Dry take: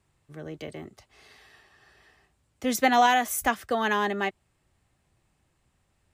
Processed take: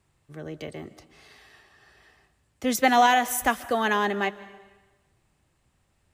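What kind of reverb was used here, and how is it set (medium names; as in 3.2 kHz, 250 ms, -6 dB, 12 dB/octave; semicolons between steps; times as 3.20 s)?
algorithmic reverb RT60 1.2 s, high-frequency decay 1×, pre-delay 100 ms, DRR 17 dB; trim +1.5 dB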